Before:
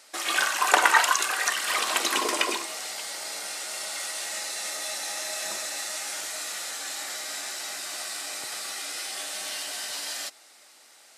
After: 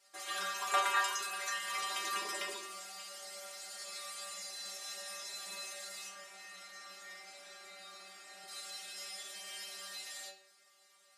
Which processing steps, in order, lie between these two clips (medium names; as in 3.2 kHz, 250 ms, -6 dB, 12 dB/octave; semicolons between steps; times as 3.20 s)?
6.08–8.48 s: treble shelf 3.9 kHz -11.5 dB; inharmonic resonator 190 Hz, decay 0.39 s, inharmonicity 0.002; reverberation RT60 0.50 s, pre-delay 6 ms, DRR 3.5 dB